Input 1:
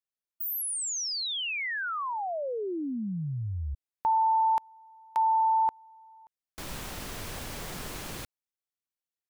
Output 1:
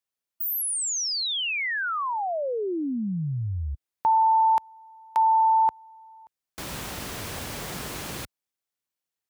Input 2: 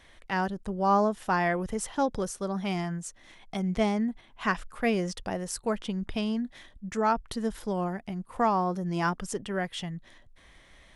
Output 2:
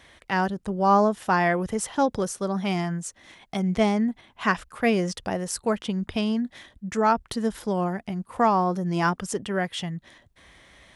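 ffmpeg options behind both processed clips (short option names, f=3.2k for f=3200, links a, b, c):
-af "highpass=58,volume=4.5dB"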